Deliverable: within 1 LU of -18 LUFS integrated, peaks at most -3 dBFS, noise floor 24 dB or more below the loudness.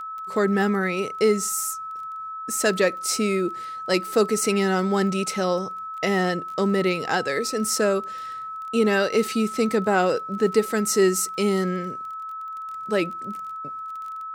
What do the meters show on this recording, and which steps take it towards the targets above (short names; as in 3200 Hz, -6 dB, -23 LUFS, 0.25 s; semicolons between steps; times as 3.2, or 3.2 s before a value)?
ticks 22/s; steady tone 1300 Hz; tone level -31 dBFS; loudness -24.0 LUFS; peak -7.5 dBFS; loudness target -18.0 LUFS
-> de-click; notch 1300 Hz, Q 30; gain +6 dB; limiter -3 dBFS